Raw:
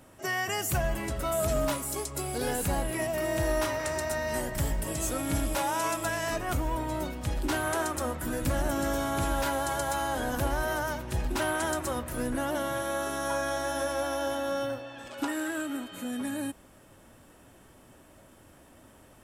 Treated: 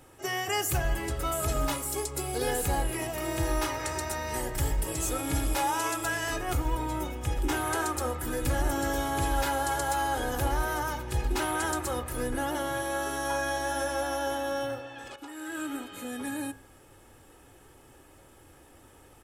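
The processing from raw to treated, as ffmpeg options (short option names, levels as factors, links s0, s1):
-filter_complex "[0:a]asettb=1/sr,asplit=3[s0][s1][s2];[s0]atrim=end=6.934[s3];[s1]atrim=start=6.93:end=7.57,asetpts=PTS-STARTPTS,afade=t=in:d=0.004:c=qsin,afade=t=out:st=0.636:d=0.004:c=qsin,equalizer=f=4300:w=5.9:g=-10[s4];[s2]atrim=start=7.566[s5];[s3][s4]acrossfade=d=0.004:c1=hsin:c2=qsin[s6];[s6][s5]acrossfade=d=0.004:c1=qsin:c2=hsin,asplit=2[s7][s8];[s7]atrim=end=15.16,asetpts=PTS-STARTPTS,afade=t=out:st=15.156:d=0.004:c=hsin:silence=0.211349[s9];[s8]atrim=start=15.16,asetpts=PTS-STARTPTS,afade=t=in:d=0.5:c=qua:silence=0.211349[s10];[s9][s10]concat=n=2:v=0:a=1,aecho=1:1:2.4:0.53,bandreject=f=53.34:t=h:w=4,bandreject=f=106.68:t=h:w=4,bandreject=f=160.02:t=h:w=4,bandreject=f=213.36:t=h:w=4,bandreject=f=266.7:t=h:w=4,bandreject=f=320.04:t=h:w=4,bandreject=f=373.38:t=h:w=4,bandreject=f=426.72:t=h:w=4,bandreject=f=480.06:t=h:w=4,bandreject=f=533.4:t=h:w=4,bandreject=f=586.74:t=h:w=4,bandreject=f=640.08:t=h:w=4,bandreject=f=693.42:t=h:w=4,bandreject=f=746.76:t=h:w=4,bandreject=f=800.1:t=h:w=4,bandreject=f=853.44:t=h:w=4,bandreject=f=906.78:t=h:w=4,bandreject=f=960.12:t=h:w=4,bandreject=f=1013.46:t=h:w=4,bandreject=f=1066.8:t=h:w=4,bandreject=f=1120.14:t=h:w=4,bandreject=f=1173.48:t=h:w=4,bandreject=f=1226.82:t=h:w=4,bandreject=f=1280.16:t=h:w=4,bandreject=f=1333.5:t=h:w=4,bandreject=f=1386.84:t=h:w=4,bandreject=f=1440.18:t=h:w=4,bandreject=f=1493.52:t=h:w=4,bandreject=f=1546.86:t=h:w=4,bandreject=f=1600.2:t=h:w=4,bandreject=f=1653.54:t=h:w=4"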